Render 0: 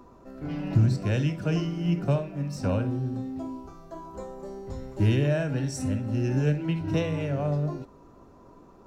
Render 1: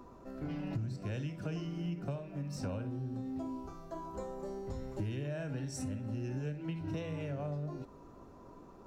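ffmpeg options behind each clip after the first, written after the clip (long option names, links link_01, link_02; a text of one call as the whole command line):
ffmpeg -i in.wav -af "acompressor=threshold=-34dB:ratio=5,volume=-2dB" out.wav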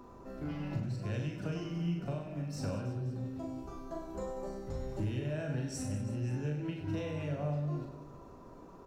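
ffmpeg -i in.wav -af "aecho=1:1:40|100|190|325|527.5:0.631|0.398|0.251|0.158|0.1" out.wav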